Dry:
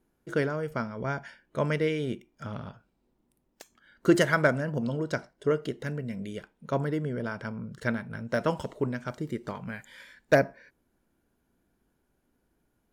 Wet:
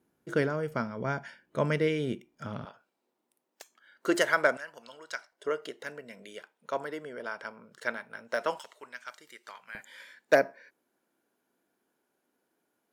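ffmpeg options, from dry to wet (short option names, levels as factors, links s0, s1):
-af "asetnsamples=n=441:p=0,asendcmd='2.65 highpass f 470;4.57 highpass f 1300;5.32 highpass f 570;8.59 highpass f 1400;9.75 highpass f 350',highpass=110"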